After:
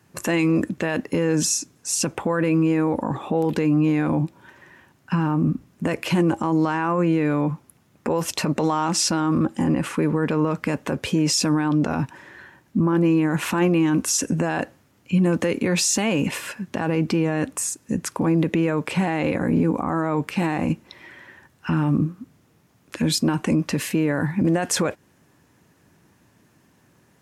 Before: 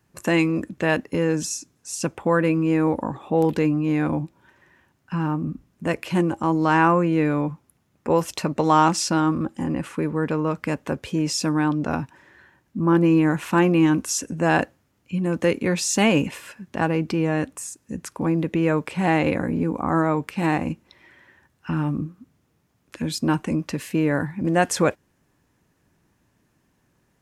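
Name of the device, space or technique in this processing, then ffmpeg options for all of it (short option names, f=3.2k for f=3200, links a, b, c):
podcast mastering chain: -af "highpass=83,acompressor=threshold=-21dB:ratio=2.5,alimiter=limit=-20dB:level=0:latency=1:release=31,volume=8.5dB" -ar 44100 -c:a libmp3lame -b:a 96k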